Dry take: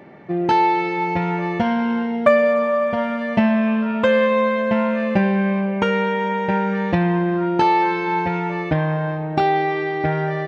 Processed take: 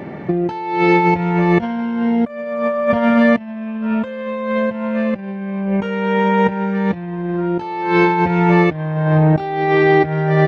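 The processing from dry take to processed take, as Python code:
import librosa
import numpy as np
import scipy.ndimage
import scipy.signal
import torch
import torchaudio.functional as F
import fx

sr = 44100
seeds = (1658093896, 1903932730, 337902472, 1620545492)

y = fx.low_shelf(x, sr, hz=310.0, db=7.0)
y = fx.over_compress(y, sr, threshold_db=-21.0, ratio=-0.5)
y = y * 10.0 ** (5.0 / 20.0)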